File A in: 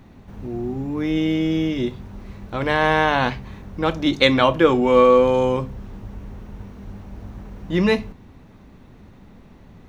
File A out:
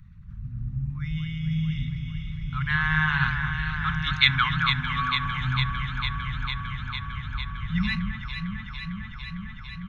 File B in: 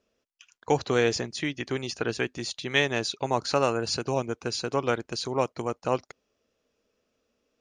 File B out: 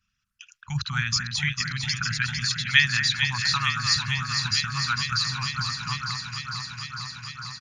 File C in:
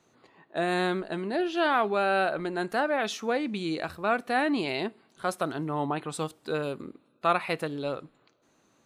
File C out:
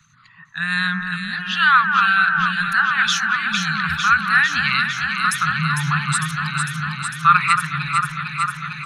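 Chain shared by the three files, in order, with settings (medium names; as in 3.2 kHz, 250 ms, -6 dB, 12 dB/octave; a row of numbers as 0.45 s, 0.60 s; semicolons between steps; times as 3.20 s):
resonances exaggerated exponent 1.5; resampled via 32 kHz; elliptic band-stop 160–1300 Hz, stop band 50 dB; echo whose repeats swap between lows and highs 226 ms, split 1.8 kHz, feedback 89%, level -5 dB; peak normalisation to -1.5 dBFS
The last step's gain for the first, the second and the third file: +1.0 dB, +8.0 dB, +16.0 dB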